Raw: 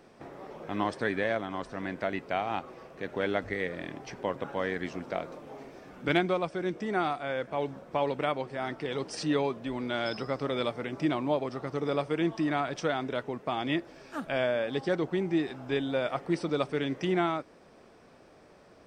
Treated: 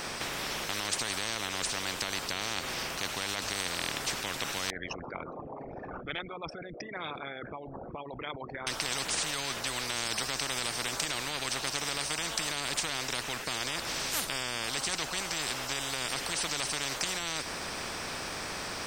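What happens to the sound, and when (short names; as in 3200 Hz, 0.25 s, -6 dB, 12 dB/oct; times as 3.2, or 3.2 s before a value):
4.7–8.67 formant sharpening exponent 3
whole clip: high shelf 2800 Hz +11.5 dB; limiter -19.5 dBFS; spectral compressor 10:1; gain +7 dB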